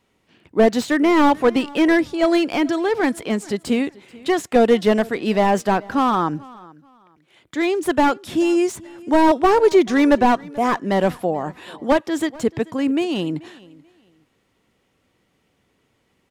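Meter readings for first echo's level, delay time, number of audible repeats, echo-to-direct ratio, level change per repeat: -22.5 dB, 435 ms, 2, -22.0 dB, -12.0 dB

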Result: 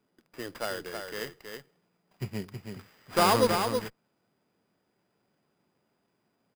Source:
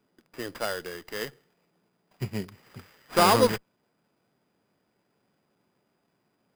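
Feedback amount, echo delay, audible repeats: no regular repeats, 322 ms, 1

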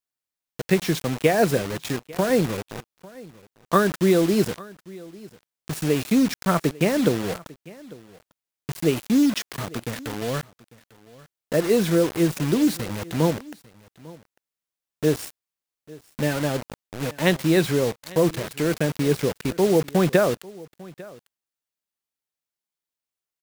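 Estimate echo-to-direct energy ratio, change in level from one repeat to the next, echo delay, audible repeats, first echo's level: -21.5 dB, no regular repeats, 848 ms, 1, -21.5 dB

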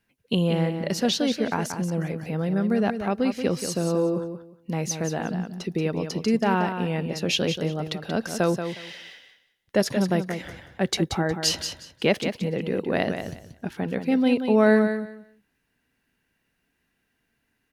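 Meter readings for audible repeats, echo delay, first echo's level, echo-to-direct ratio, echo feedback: 2, 181 ms, -8.0 dB, -8.0 dB, 20%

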